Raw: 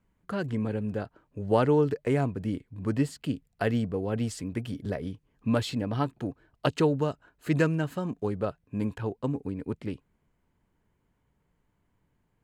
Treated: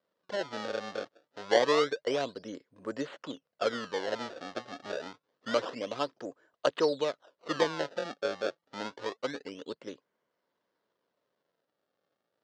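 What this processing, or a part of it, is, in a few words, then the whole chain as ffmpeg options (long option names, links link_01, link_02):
circuit-bent sampling toy: -af "acrusher=samples=25:mix=1:aa=0.000001:lfo=1:lforange=40:lforate=0.27,highpass=490,equalizer=frequency=540:width_type=q:width=4:gain=7,equalizer=frequency=820:width_type=q:width=4:gain=-5,equalizer=frequency=2400:width_type=q:width=4:gain=-7,lowpass=frequency=5300:width=0.5412,lowpass=frequency=5300:width=1.3066"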